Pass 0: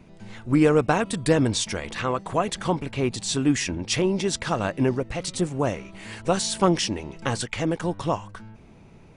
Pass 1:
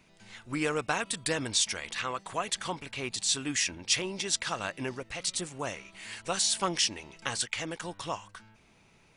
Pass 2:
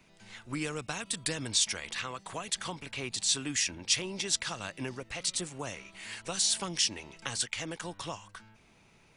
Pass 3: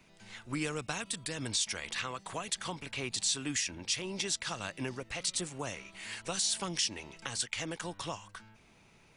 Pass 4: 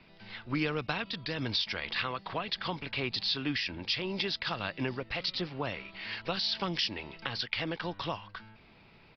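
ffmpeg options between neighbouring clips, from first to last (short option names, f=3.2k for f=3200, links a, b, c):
-af "tiltshelf=f=970:g=-8.5,volume=-7.5dB"
-filter_complex "[0:a]acrossover=split=220|3000[a][b][c];[b]acompressor=threshold=-36dB:ratio=6[d];[a][d][c]amix=inputs=3:normalize=0"
-af "alimiter=limit=-20dB:level=0:latency=1:release=175"
-af "aresample=11025,aresample=44100,volume=4dB"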